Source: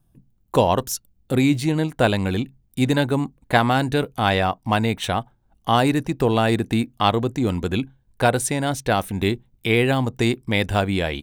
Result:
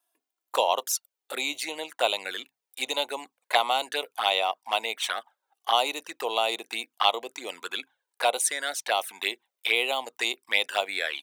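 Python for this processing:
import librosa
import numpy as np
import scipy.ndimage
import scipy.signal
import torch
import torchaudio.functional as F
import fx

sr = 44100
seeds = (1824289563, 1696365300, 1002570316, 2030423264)

y = fx.env_flanger(x, sr, rest_ms=3.0, full_db=-15.5)
y = scipy.signal.sosfilt(scipy.signal.bessel(4, 900.0, 'highpass', norm='mag', fs=sr, output='sos'), y)
y = F.gain(torch.from_numpy(y), 3.0).numpy()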